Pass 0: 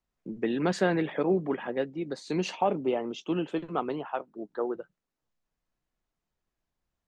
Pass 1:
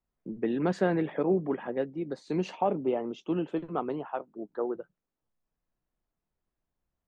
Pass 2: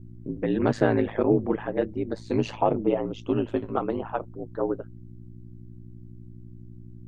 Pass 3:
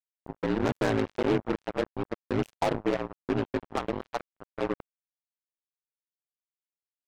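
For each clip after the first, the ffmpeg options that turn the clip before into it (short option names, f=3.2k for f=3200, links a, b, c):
-af "highshelf=f=2k:g=-11"
-af "aeval=exprs='val(0)+0.00501*(sin(2*PI*60*n/s)+sin(2*PI*2*60*n/s)/2+sin(2*PI*3*60*n/s)/3+sin(2*PI*4*60*n/s)/4+sin(2*PI*5*60*n/s)/5)':c=same,aeval=exprs='val(0)*sin(2*PI*54*n/s)':c=same,volume=7.5dB"
-af "asoftclip=type=tanh:threshold=-18dB,acrusher=bits=3:mix=0:aa=0.5,volume=-2dB"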